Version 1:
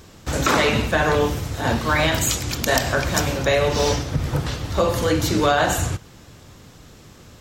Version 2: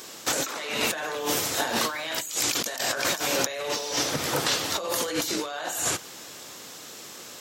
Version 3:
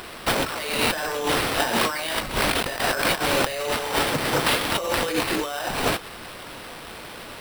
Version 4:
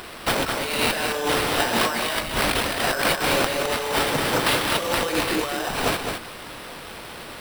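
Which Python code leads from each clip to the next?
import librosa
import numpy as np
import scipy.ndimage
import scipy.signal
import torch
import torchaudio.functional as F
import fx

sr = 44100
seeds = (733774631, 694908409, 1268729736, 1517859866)

y1 = scipy.signal.sosfilt(scipy.signal.butter(2, 360.0, 'highpass', fs=sr, output='sos'), x)
y1 = fx.high_shelf(y1, sr, hz=3500.0, db=9.5)
y1 = fx.over_compress(y1, sr, threshold_db=-27.0, ratio=-1.0)
y1 = y1 * 10.0 ** (-2.0 / 20.0)
y2 = fx.sample_hold(y1, sr, seeds[0], rate_hz=6700.0, jitter_pct=0)
y2 = y2 * 10.0 ** (4.0 / 20.0)
y3 = y2 + 10.0 ** (-6.0 / 20.0) * np.pad(y2, (int(211 * sr / 1000.0), 0))[:len(y2)]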